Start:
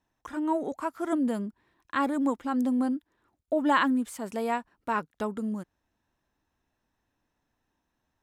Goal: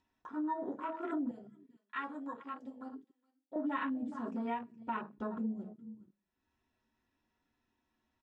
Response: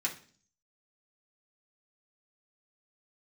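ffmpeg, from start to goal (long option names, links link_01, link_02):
-filter_complex "[0:a]aecho=1:1:419:0.15[link_01];[1:a]atrim=start_sample=2205,asetrate=57330,aresample=44100[link_02];[link_01][link_02]afir=irnorm=-1:irlink=0,acompressor=mode=upward:threshold=-43dB:ratio=2.5,asettb=1/sr,asplit=3[link_03][link_04][link_05];[link_03]atrim=end=1.314[link_06];[link_04]atrim=start=1.31:end=3.56,asetpts=PTS-STARTPTS,afade=type=in:duration=0.004:curve=qsin,afade=type=out:start_time=2.246:duration=0.004:curve=qsin,highpass=frequency=1400:poles=1[link_07];[link_05]atrim=start=3.556[link_08];[link_06][link_07]acrossfade=duration=0.004:curve1=hsin:curve2=qsin[link_09];[link_09][link_08]acrossfade=duration=0.004:curve1=qsin:curve2=hsin,acompressor=threshold=-28dB:ratio=4,afwtdn=0.0112,lowpass=frequency=6500:width=0.5412,lowpass=frequency=6500:width=1.3066,volume=-5.5dB"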